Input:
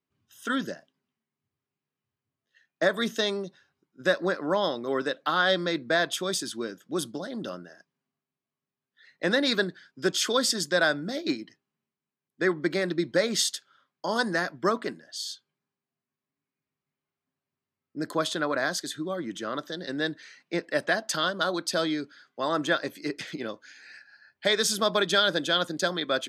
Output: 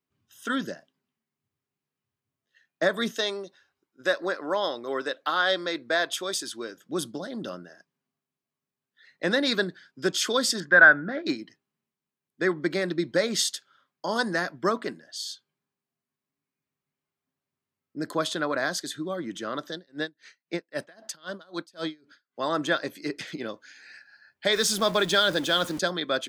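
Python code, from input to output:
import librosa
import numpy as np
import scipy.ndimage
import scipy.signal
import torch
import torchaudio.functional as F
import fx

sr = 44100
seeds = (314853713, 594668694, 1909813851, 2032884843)

y = fx.peak_eq(x, sr, hz=160.0, db=-12.5, octaves=1.3, at=(3.11, 6.78))
y = fx.lowpass_res(y, sr, hz=1600.0, q=4.3, at=(10.6, 11.26))
y = fx.tremolo_db(y, sr, hz=3.8, depth_db=31, at=(19.75, 22.4))
y = fx.zero_step(y, sr, step_db=-35.0, at=(24.53, 25.79))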